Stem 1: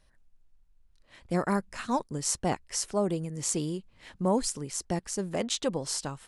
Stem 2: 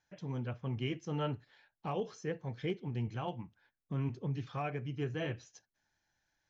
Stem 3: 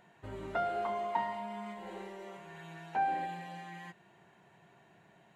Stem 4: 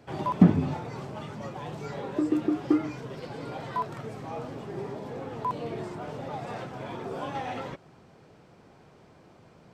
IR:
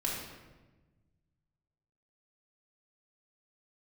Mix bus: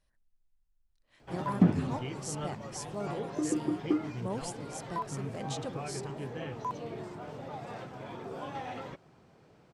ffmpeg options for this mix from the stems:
-filter_complex "[0:a]volume=-11dB[a];[1:a]adelay=1200,volume=-4dB[b];[2:a]adelay=2450,volume=-15.5dB[c];[3:a]adelay=1200,volume=-5.5dB[d];[a][b][c][d]amix=inputs=4:normalize=0"

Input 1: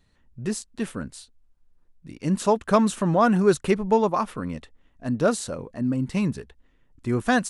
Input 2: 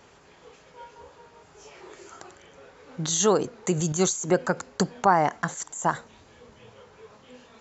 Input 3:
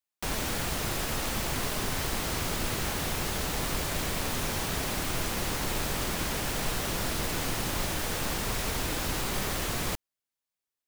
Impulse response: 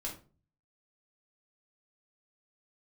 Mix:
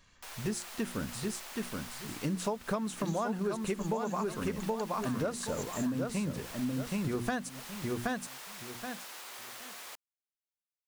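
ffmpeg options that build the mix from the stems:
-filter_complex "[0:a]bandreject=f=60:t=h:w=6,bandreject=f=120:t=h:w=6,bandreject=f=180:t=h:w=6,bandreject=f=240:t=h:w=6,bandreject=f=300:t=h:w=6,bandreject=f=360:t=h:w=6,volume=-1.5dB,asplit=2[a][b];[b]volume=-5dB[c];[1:a]highpass=1.4k,aecho=1:1:1.8:0.96,acompressor=threshold=-30dB:ratio=6,volume=-10dB[d];[2:a]highpass=740,volume=-12dB[e];[c]aecho=0:1:774|1548|2322:1|0.2|0.04[f];[a][d][e][f]amix=inputs=4:normalize=0,acompressor=threshold=-29dB:ratio=16"

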